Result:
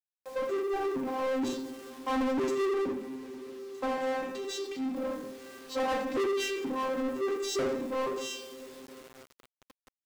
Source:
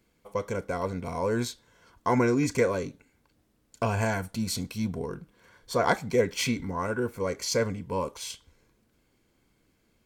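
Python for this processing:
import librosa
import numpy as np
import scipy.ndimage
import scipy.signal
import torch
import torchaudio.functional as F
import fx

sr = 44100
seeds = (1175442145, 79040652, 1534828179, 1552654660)

y = fx.vocoder_arp(x, sr, chord='bare fifth', root=60, every_ms=474)
y = fx.peak_eq(y, sr, hz=1400.0, db=-9.5, octaves=0.28)
y = fx.rev_double_slope(y, sr, seeds[0], early_s=0.55, late_s=4.2, knee_db=-27, drr_db=0.0)
y = fx.quant_dither(y, sr, seeds[1], bits=10, dither='none')
y = fx.high_shelf(y, sr, hz=5700.0, db=-7.0, at=(2.7, 4.96))
y = fx.power_curve(y, sr, exponent=0.7)
y = 10.0 ** (-23.5 / 20.0) * np.tanh(y / 10.0 ** (-23.5 / 20.0))
y = y * librosa.db_to_amplitude(-3.0)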